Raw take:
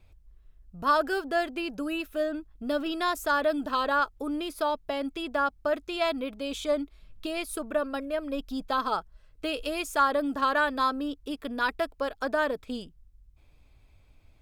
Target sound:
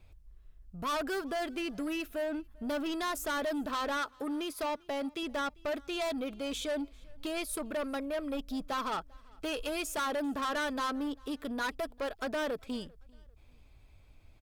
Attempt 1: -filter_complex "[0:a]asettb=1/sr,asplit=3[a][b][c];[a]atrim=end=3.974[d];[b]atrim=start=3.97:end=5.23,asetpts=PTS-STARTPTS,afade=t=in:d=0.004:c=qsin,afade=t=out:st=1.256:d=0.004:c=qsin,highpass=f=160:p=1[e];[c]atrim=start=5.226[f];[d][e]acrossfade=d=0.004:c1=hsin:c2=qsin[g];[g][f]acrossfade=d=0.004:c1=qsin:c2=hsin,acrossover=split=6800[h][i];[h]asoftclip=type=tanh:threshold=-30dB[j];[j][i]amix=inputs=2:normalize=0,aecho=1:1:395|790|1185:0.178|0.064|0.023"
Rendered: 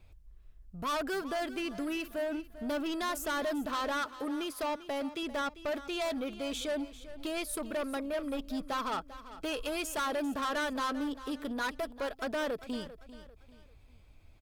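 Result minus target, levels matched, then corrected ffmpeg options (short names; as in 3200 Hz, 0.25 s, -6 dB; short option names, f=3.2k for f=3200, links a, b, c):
echo-to-direct +12 dB
-filter_complex "[0:a]asettb=1/sr,asplit=3[a][b][c];[a]atrim=end=3.974[d];[b]atrim=start=3.97:end=5.23,asetpts=PTS-STARTPTS,afade=t=in:d=0.004:c=qsin,afade=t=out:st=1.256:d=0.004:c=qsin,highpass=f=160:p=1[e];[c]atrim=start=5.226[f];[d][e]acrossfade=d=0.004:c1=hsin:c2=qsin[g];[g][f]acrossfade=d=0.004:c1=qsin:c2=hsin,acrossover=split=6800[h][i];[h]asoftclip=type=tanh:threshold=-30dB[j];[j][i]amix=inputs=2:normalize=0,aecho=1:1:395|790:0.0447|0.0161"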